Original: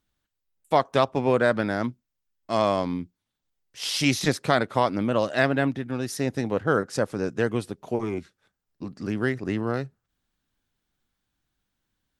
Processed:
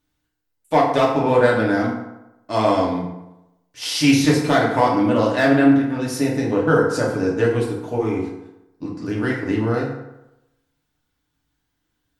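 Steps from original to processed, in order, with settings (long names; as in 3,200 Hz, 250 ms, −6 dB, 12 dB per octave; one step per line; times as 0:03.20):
hard clipping −10.5 dBFS, distortion −22 dB
feedback delay network reverb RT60 0.92 s, low-frequency decay 0.9×, high-frequency decay 0.6×, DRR −4 dB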